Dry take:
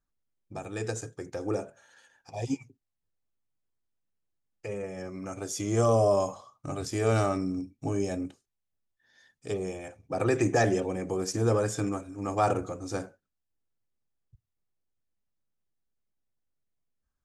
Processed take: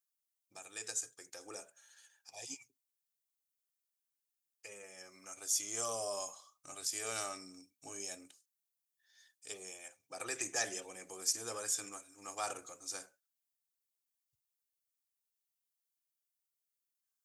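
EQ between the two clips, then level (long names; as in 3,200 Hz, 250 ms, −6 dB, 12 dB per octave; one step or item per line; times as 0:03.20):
first difference
+4.0 dB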